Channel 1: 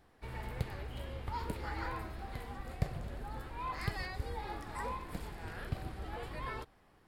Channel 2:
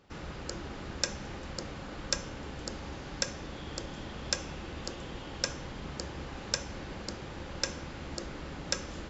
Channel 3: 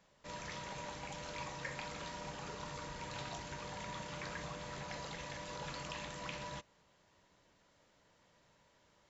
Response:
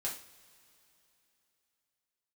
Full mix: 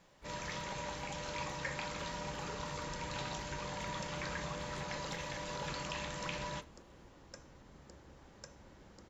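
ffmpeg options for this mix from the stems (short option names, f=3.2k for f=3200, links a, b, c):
-filter_complex "[0:a]acompressor=threshold=-46dB:ratio=6,volume=-7dB[a];[1:a]equalizer=f=3.4k:t=o:w=1.2:g=-14,adelay=1900,volume=-16.5dB[b];[2:a]bandreject=f=690:w=20,volume=2.5dB,asplit=2[c][d];[d]volume=-14dB[e];[3:a]atrim=start_sample=2205[f];[e][f]afir=irnorm=-1:irlink=0[g];[a][b][c][g]amix=inputs=4:normalize=0"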